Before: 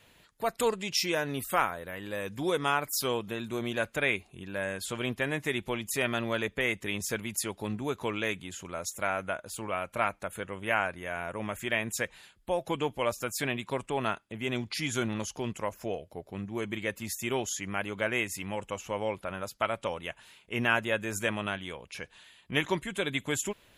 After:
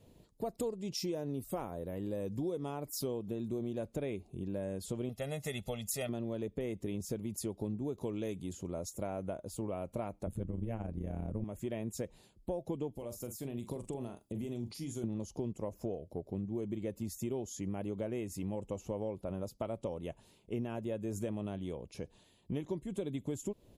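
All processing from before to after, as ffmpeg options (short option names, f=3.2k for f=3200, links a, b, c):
-filter_complex "[0:a]asettb=1/sr,asplit=3[a][b][c];[a]atrim=end=5.094[d];[b]atrim=start=5.09:end=6.09,asetpts=PTS-STARTPTS,afade=t=in:d=0.004:c=qsin,afade=t=out:st=0.996:d=0.004:c=qsin,tiltshelf=f=900:g=-7.5,aecho=1:1:1.5:0.85,atrim=end_sample=44100[e];[c]atrim=start=6.086[f];[d][e]acrossfade=d=0.004:c1=hsin:c2=qsin[g];[g][f]acrossfade=d=0.004:c1=qsin:c2=hsin,asettb=1/sr,asplit=3[h][i][j];[h]atrim=end=7.984[k];[i]atrim=start=7.98:end=8.53,asetpts=PTS-STARTPTS,afade=t=in:d=0.004:c=qsin,afade=t=out:st=0.546:d=0.004:c=qsin,highshelf=f=3.8k:g=6.5,acompressor=mode=upward:threshold=-42dB:ratio=2.5:attack=3.2:release=140:knee=2.83:detection=peak[l];[j]atrim=start=8.526[m];[k][l]acrossfade=d=0.004:c1=hsin:c2=qsin[n];[n][m]acrossfade=d=0.004:c1=qsin:c2=hsin,asettb=1/sr,asplit=3[o][p][q];[o]atrim=end=10.264[r];[p]atrim=start=10.26:end=11.44,asetpts=PTS-STARTPTS,afade=t=in:d=0.004:c=qsin,afade=t=out:st=1.176:d=0.004:c=qsin,bass=f=250:g=15,treble=f=4k:g=0,tremolo=f=120:d=0.788[s];[q]atrim=start=11.436[t];[r][s]acrossfade=d=0.004:c1=hsin:c2=qsin[u];[u][t]acrossfade=d=0.004:c1=qsin:c2=hsin,asettb=1/sr,asplit=3[v][w][x];[v]atrim=end=12.954[y];[w]atrim=start=12.95:end=15.04,asetpts=PTS-STARTPTS,afade=t=in:d=0.004:c=qsin,afade=t=out:st=2.086:d=0.004:c=qsin,aemphasis=mode=production:type=50kf,acompressor=threshold=-36dB:ratio=12:attack=3.2:release=140:knee=1:detection=peak,asplit=2[z][aa];[aa]adelay=42,volume=-10dB[ab];[z][ab]amix=inputs=2:normalize=0,atrim=end_sample=92169[ac];[x]atrim=start=15.036[ad];[y][ac]acrossfade=d=0.004:c1=hsin:c2=qsin[ae];[ae][ad]acrossfade=d=0.004:c1=qsin:c2=hsin,firequalizer=gain_entry='entry(350,0);entry(1500,-25);entry(4800,-13)':delay=0.05:min_phase=1,acompressor=threshold=-39dB:ratio=6,volume=5dB"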